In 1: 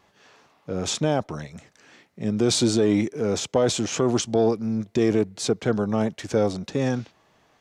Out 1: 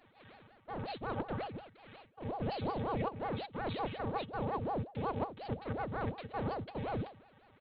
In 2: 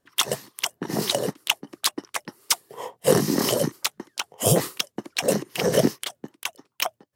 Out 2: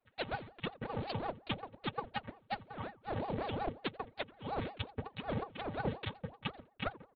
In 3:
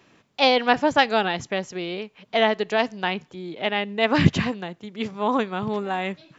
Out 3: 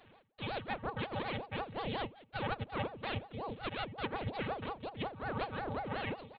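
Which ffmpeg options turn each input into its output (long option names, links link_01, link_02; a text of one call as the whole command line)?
ffmpeg -i in.wav -filter_complex "[0:a]aeval=exprs='if(lt(val(0),0),0.251*val(0),val(0))':channel_layout=same,bandreject=frequency=50:width_type=h:width=6,bandreject=frequency=100:width_type=h:width=6,bandreject=frequency=150:width_type=h:width=6,bandreject=frequency=200:width_type=h:width=6,bandreject=frequency=250:width_type=h:width=6,bandreject=frequency=300:width_type=h:width=6,bandreject=frequency=350:width_type=h:width=6,bandreject=frequency=400:width_type=h:width=6,bandreject=frequency=450:width_type=h:width=6,aecho=1:1:6.3:0.73,areverse,acompressor=threshold=-31dB:ratio=12,areverse,afftfilt=real='hypot(re,im)*cos(PI*b)':imag='0':win_size=512:overlap=0.75,aresample=11025,acrusher=bits=6:mode=log:mix=0:aa=0.000001,aresample=44100,asplit=2[link_01][link_02];[link_02]adelay=86,lowpass=frequency=1600:poles=1,volume=-20dB,asplit=2[link_03][link_04];[link_04]adelay=86,lowpass=frequency=1600:poles=1,volume=0.34,asplit=2[link_05][link_06];[link_06]adelay=86,lowpass=frequency=1600:poles=1,volume=0.34[link_07];[link_01][link_03][link_05][link_07]amix=inputs=4:normalize=0,aresample=8000,aresample=44100,aeval=exprs='val(0)*sin(2*PI*460*n/s+460*0.8/5.5*sin(2*PI*5.5*n/s))':channel_layout=same,volume=3dB" out.wav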